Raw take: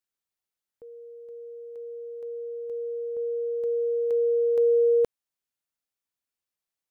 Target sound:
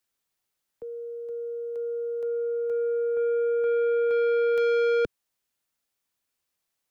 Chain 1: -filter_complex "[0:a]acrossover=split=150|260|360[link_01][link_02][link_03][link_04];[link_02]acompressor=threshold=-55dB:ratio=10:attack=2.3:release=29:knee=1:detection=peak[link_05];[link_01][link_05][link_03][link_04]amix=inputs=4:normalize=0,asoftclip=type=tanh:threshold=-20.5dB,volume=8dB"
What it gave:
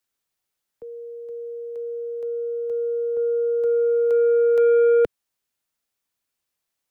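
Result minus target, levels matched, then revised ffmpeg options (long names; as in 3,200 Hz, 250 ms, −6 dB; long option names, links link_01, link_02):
soft clipping: distortion −9 dB
-filter_complex "[0:a]acrossover=split=150|260|360[link_01][link_02][link_03][link_04];[link_02]acompressor=threshold=-55dB:ratio=10:attack=2.3:release=29:knee=1:detection=peak[link_05];[link_01][link_05][link_03][link_04]amix=inputs=4:normalize=0,asoftclip=type=tanh:threshold=-29.5dB,volume=8dB"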